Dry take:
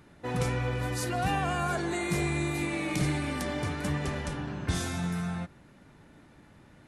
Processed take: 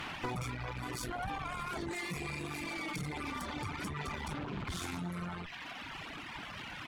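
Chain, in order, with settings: 0.99–1.90 s: octave divider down 2 oct, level -3 dB; tone controls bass -6 dB, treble -5 dB; comb 0.9 ms, depth 71%; band noise 640–3100 Hz -52 dBFS; peak limiter -30.5 dBFS, peak gain reduction 13 dB; one-sided clip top -53 dBFS, bottom -33.5 dBFS; compression 2.5:1, threshold -45 dBFS, peak gain reduction 4.5 dB; reverb removal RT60 1.7 s; 4.32–4.99 s: loudspeaker Doppler distortion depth 0.27 ms; trim +11 dB

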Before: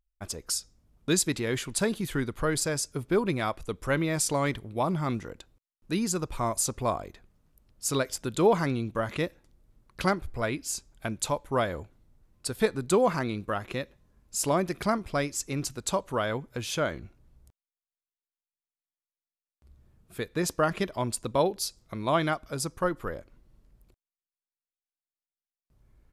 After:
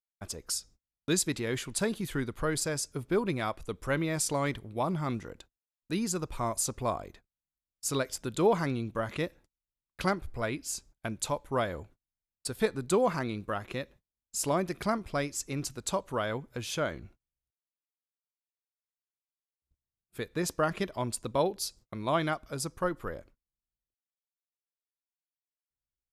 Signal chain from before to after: gate -50 dBFS, range -34 dB; trim -3 dB

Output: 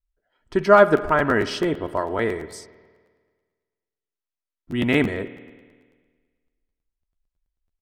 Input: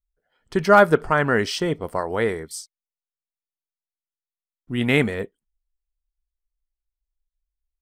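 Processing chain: low-pass 3.3 kHz 6 dB/octave; comb 3.1 ms, depth 37%; spring tank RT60 1.6 s, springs 51 ms, chirp 80 ms, DRR 14 dB; crackling interface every 0.11 s, samples 512, repeat, from 0.96 s

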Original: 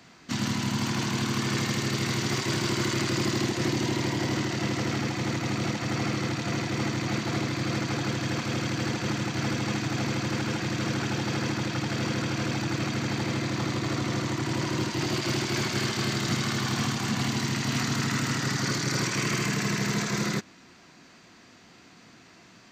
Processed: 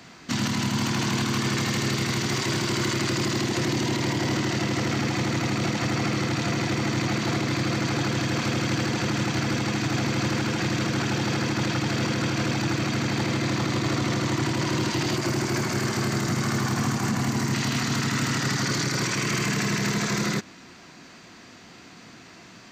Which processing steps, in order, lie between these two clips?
15.16–17.54 s: peaking EQ 3.4 kHz -9.5 dB 1.1 oct; peak limiter -22.5 dBFS, peak gain reduction 7.5 dB; trim +6 dB

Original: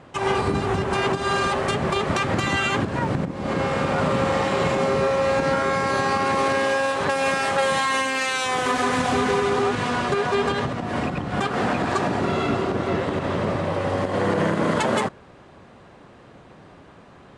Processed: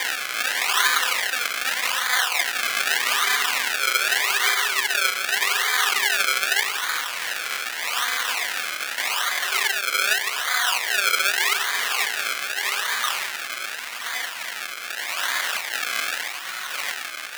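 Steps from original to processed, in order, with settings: Paulstretch 6.9×, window 0.05 s, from 8.74 s; decimation with a swept rate 32×, swing 100% 0.83 Hz; resonant high-pass 1.8 kHz, resonance Q 1.5; trim +5 dB

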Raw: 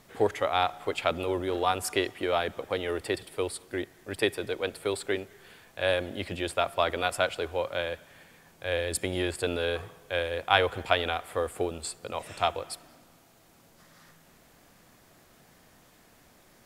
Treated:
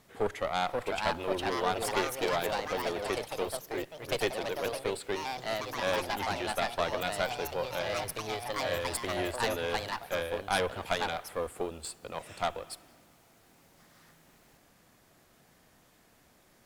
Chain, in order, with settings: valve stage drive 21 dB, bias 0.75; ever faster or slower copies 566 ms, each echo +3 st, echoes 3

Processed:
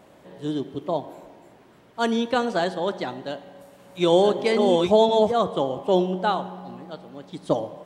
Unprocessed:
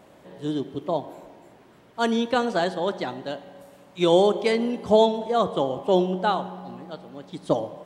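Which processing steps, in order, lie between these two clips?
3.15–5.32 s: chunks repeated in reverse 646 ms, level -2.5 dB

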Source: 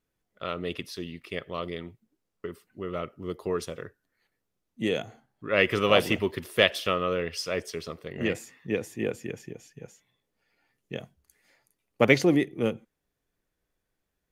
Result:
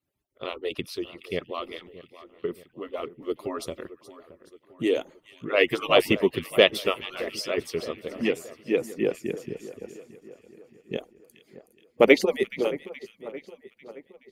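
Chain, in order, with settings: harmonic-percussive separation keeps percussive; fifteen-band graphic EQ 400 Hz +4 dB, 1.6 kHz -6 dB, 6.3 kHz -5 dB; on a send: two-band feedback delay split 1.8 kHz, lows 621 ms, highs 423 ms, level -16 dB; on the sum: trim +3.5 dB

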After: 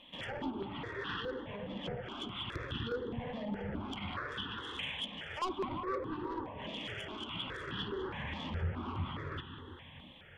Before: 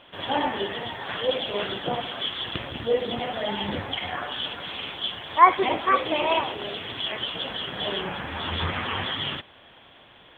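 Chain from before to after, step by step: low-pass that closes with the level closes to 620 Hz, closed at -23.5 dBFS; on a send: two-band feedback delay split 1 kHz, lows 356 ms, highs 200 ms, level -10.5 dB; on the sum: saturation -25 dBFS, distortion -11 dB; peaking EQ 700 Hz -13.5 dB 0.72 oct; stepped phaser 4.8 Hz 390–2200 Hz

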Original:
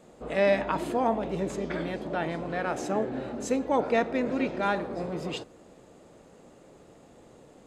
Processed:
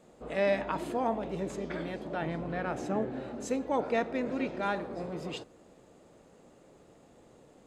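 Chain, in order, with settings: 2.22–3.10 s: tone controls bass +6 dB, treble -5 dB; trim -4.5 dB

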